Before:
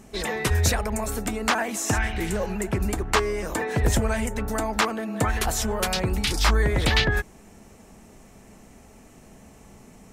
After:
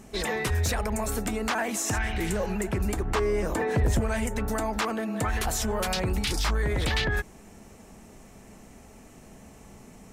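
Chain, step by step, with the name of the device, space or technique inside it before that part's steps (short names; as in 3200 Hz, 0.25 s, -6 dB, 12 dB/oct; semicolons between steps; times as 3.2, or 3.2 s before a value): soft clipper into limiter (soft clip -13.5 dBFS, distortion -20 dB; limiter -19.5 dBFS, peak gain reduction 5.5 dB); 3.05–4.01 tilt shelf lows +3.5 dB, about 1200 Hz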